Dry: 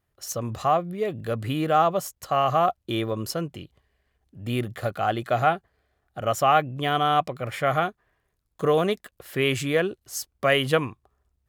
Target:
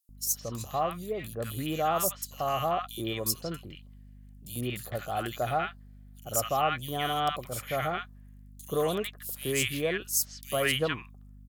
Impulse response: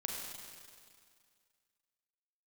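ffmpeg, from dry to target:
-filter_complex "[0:a]aeval=exprs='val(0)+0.00794*(sin(2*PI*50*n/s)+sin(2*PI*2*50*n/s)/2+sin(2*PI*3*50*n/s)/3+sin(2*PI*4*50*n/s)/4+sin(2*PI*5*50*n/s)/5)':channel_layout=same,acrossover=split=1200|3900[link_01][link_02][link_03];[link_01]adelay=90[link_04];[link_02]adelay=160[link_05];[link_04][link_05][link_03]amix=inputs=3:normalize=0,crystalizer=i=3.5:c=0,volume=-7dB"

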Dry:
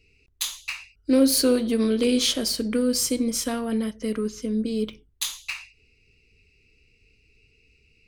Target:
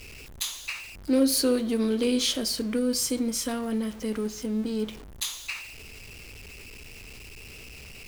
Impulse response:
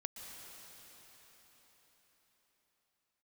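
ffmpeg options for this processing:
-af "aeval=exprs='val(0)+0.5*0.0178*sgn(val(0))':channel_layout=same,volume=-4dB"

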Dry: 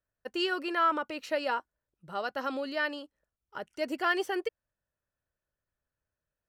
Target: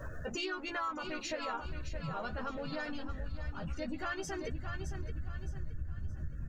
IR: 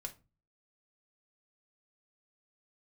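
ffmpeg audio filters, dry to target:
-filter_complex "[0:a]aeval=exprs='val(0)+0.5*0.0168*sgn(val(0))':channel_layout=same,acrusher=bits=6:mode=log:mix=0:aa=0.000001,asubboost=boost=10.5:cutoff=150,afftdn=noise_reduction=31:noise_floor=-42,equalizer=frequency=6700:width=3.4:gain=13.5,bandreject=frequency=3000:width=23,asplit=2[link_01][link_02];[link_02]adelay=13,volume=-4dB[link_03];[link_01][link_03]amix=inputs=2:normalize=0,aecho=1:1:618|1236|1854|2472:0.355|0.131|0.0486|0.018,asplit=2[link_04][link_05];[link_05]asetrate=37084,aresample=44100,atempo=1.18921,volume=-7dB[link_06];[link_04][link_06]amix=inputs=2:normalize=0,acompressor=threshold=-41dB:ratio=4,volume=3dB"

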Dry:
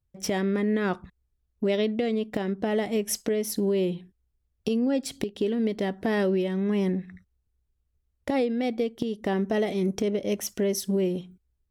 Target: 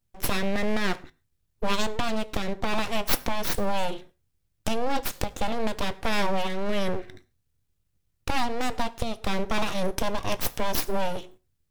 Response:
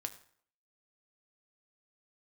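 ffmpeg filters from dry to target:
-filter_complex "[0:a]tiltshelf=frequency=1400:gain=-3.5,aeval=exprs='abs(val(0))':channel_layout=same,asplit=2[link_01][link_02];[1:a]atrim=start_sample=2205,atrim=end_sample=6615[link_03];[link_02][link_03]afir=irnorm=-1:irlink=0,volume=1dB[link_04];[link_01][link_04]amix=inputs=2:normalize=0"

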